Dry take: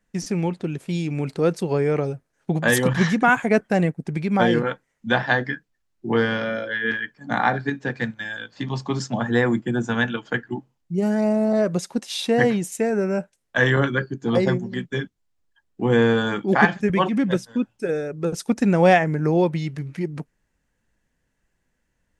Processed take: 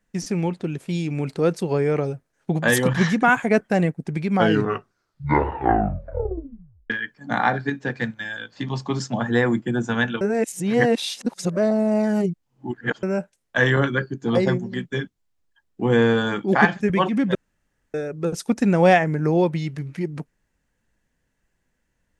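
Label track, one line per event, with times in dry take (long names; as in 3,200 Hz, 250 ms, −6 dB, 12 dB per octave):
4.290000	4.290000	tape stop 2.61 s
10.210000	13.030000	reverse
17.350000	17.940000	fill with room tone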